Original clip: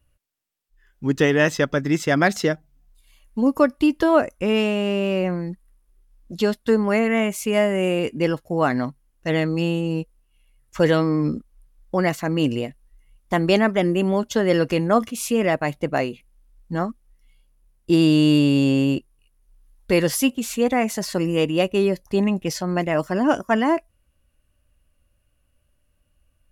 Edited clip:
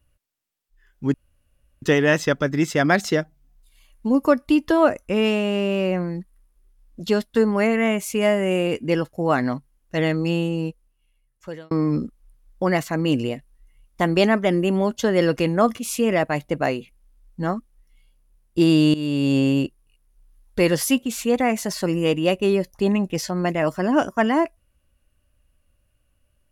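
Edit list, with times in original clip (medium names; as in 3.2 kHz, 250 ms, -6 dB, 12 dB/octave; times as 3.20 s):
1.14 s: insert room tone 0.68 s
9.78–11.03 s: fade out linear
18.26–18.69 s: fade in, from -16.5 dB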